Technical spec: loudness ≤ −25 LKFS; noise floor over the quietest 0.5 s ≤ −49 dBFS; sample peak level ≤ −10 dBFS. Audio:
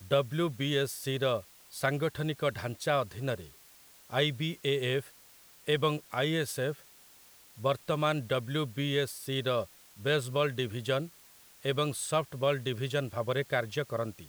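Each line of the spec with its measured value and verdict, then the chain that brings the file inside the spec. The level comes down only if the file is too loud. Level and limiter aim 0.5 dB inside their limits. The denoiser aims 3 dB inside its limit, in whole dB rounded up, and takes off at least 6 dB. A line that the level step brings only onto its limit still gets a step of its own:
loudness −31.5 LKFS: in spec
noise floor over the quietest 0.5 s −57 dBFS: in spec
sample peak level −13.5 dBFS: in spec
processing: no processing needed

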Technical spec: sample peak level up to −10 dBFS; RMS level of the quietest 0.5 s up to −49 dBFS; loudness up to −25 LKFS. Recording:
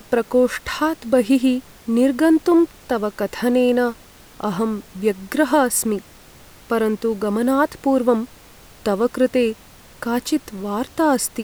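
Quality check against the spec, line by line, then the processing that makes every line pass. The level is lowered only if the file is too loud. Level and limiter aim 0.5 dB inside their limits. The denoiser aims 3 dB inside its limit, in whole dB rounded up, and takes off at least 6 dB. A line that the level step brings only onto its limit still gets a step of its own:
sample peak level −5.0 dBFS: out of spec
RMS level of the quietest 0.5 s −45 dBFS: out of spec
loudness −20.0 LKFS: out of spec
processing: level −5.5 dB

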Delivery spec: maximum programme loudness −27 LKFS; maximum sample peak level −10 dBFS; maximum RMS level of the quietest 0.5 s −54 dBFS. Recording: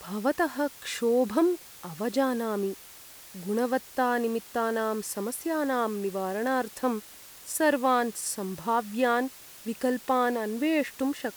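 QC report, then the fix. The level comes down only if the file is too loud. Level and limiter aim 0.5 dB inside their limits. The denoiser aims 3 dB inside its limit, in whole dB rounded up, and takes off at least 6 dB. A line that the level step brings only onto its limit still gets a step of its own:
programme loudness −28.5 LKFS: in spec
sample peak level −12.0 dBFS: in spec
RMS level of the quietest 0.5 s −48 dBFS: out of spec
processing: broadband denoise 9 dB, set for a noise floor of −48 dBFS

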